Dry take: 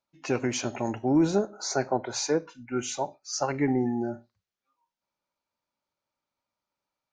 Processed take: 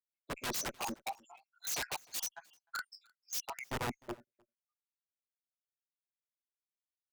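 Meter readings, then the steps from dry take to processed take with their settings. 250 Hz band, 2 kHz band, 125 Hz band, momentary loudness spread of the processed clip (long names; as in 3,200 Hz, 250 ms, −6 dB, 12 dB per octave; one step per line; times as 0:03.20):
−22.0 dB, −4.5 dB, −16.0 dB, 13 LU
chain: time-frequency cells dropped at random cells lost 84%
high-pass filter 1,400 Hz 6 dB per octave
low-pass that shuts in the quiet parts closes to 2,600 Hz, open at −36.5 dBFS
in parallel at −1 dB: downward compressor 10 to 1, threshold −44 dBFS, peak gain reduction 12.5 dB
on the sum: multi-voice chorus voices 2, 0.4 Hz, delay 14 ms, depth 2.7 ms
wrap-around overflow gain 36.5 dB
harmonic generator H 7 −25 dB, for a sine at −36.5 dBFS
on a send: single-tap delay 306 ms −22.5 dB
on the sum: multiband upward and downward expander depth 70%
level +4.5 dB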